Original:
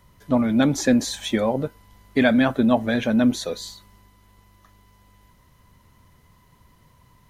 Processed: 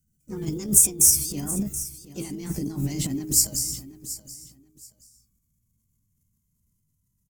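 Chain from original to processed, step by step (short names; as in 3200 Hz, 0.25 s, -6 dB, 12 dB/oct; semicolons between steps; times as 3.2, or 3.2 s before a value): gliding pitch shift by +7 st ending unshifted; gate -46 dBFS, range -18 dB; transient shaper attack -5 dB, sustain +10 dB; harmoniser +5 st -11 dB; negative-ratio compressor -20 dBFS, ratio -0.5; EQ curve 200 Hz 0 dB, 320 Hz -12 dB, 810 Hz -27 dB, 4100 Hz -15 dB, 6800 Hz +6 dB; on a send: feedback echo 0.727 s, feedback 22%, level -15 dB; on the sum: gain +1 dB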